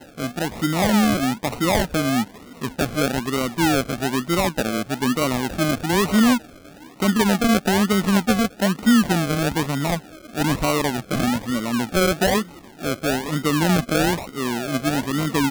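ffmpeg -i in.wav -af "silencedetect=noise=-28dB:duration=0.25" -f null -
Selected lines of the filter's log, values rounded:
silence_start: 2.24
silence_end: 2.62 | silence_duration: 0.38
silence_start: 6.38
silence_end: 7.00 | silence_duration: 0.62
silence_start: 9.98
silence_end: 10.35 | silence_duration: 0.36
silence_start: 12.43
silence_end: 12.82 | silence_duration: 0.40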